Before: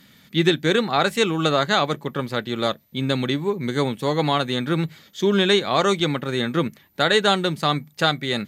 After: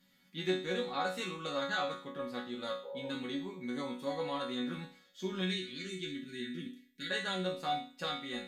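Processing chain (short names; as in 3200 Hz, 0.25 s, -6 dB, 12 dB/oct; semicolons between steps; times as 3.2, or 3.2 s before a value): 2.86–3.1 spectral repair 400–1000 Hz after; 5.41–7.1 elliptic band-stop 370–1800 Hz, stop band 50 dB; resonator bank F#3 sus4, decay 0.46 s; gain +3 dB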